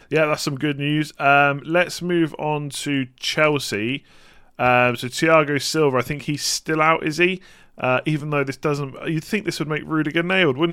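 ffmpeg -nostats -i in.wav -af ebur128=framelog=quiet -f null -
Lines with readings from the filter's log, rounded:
Integrated loudness:
  I:         -20.3 LUFS
  Threshold: -30.6 LUFS
Loudness range:
  LRA:         3.3 LU
  Threshold: -40.6 LUFS
  LRA low:   -22.5 LUFS
  LRA high:  -19.2 LUFS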